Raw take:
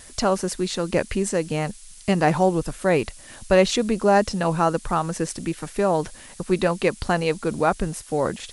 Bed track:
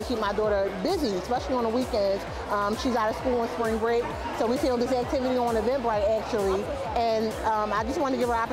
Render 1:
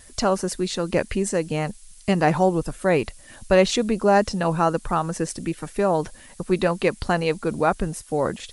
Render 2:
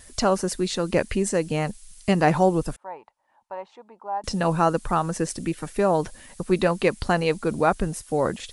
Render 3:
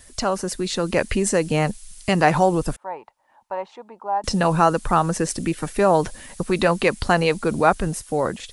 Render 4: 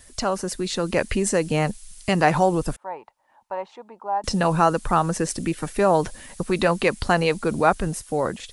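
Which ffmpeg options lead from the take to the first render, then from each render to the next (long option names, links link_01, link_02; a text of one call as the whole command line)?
ffmpeg -i in.wav -af "afftdn=noise_reduction=6:noise_floor=-45" out.wav
ffmpeg -i in.wav -filter_complex "[0:a]asettb=1/sr,asplit=3[link_01][link_02][link_03];[link_01]atrim=end=2.764[link_04];[link_02]atrim=start=2.76:end=4.24,asetpts=PTS-STARTPTS,afade=type=in:duration=0.004:curve=qsin,afade=type=out:start_time=1.476:duration=0.004:curve=qsin,bandpass=frequency=890:width_type=q:width=10[link_05];[link_03]atrim=start=4.236[link_06];[link_04][link_05]acrossfade=duration=0.004:curve1=hsin:curve2=qsin[link_07];[link_07][link_06]acrossfade=duration=0.004:curve1=qsin:curve2=hsin" out.wav
ffmpeg -i in.wav -filter_complex "[0:a]acrossover=split=610|2100[link_01][link_02][link_03];[link_01]alimiter=limit=-19.5dB:level=0:latency=1[link_04];[link_04][link_02][link_03]amix=inputs=3:normalize=0,dynaudnorm=framelen=230:gausssize=7:maxgain=7dB" out.wav
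ffmpeg -i in.wav -af "volume=-1.5dB" out.wav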